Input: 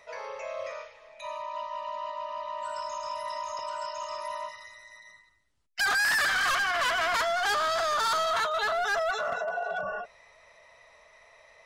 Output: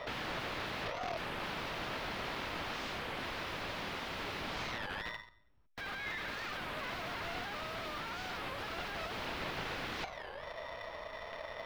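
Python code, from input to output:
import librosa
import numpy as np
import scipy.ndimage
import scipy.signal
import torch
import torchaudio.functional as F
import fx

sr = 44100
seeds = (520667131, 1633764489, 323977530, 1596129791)

y = np.r_[np.sort(x[:len(x) // 8 * 8].reshape(-1, 8), axis=1).ravel(), x[len(x) // 8 * 8:]]
y = fx.notch(y, sr, hz=2100.0, q=25.0)
y = fx.leveller(y, sr, passes=2)
y = (np.mod(10.0 ** (37.5 / 20.0) * y + 1.0, 2.0) - 1.0) / 10.0 ** (37.5 / 20.0)
y = fx.air_absorb(y, sr, metres=350.0)
y = fx.record_warp(y, sr, rpm=33.33, depth_cents=250.0)
y = y * librosa.db_to_amplitude(10.5)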